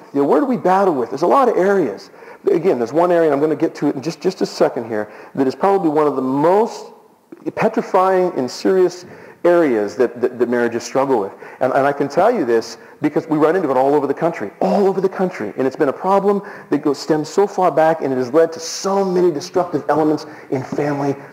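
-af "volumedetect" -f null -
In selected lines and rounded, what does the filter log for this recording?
mean_volume: -16.9 dB
max_volume: -2.0 dB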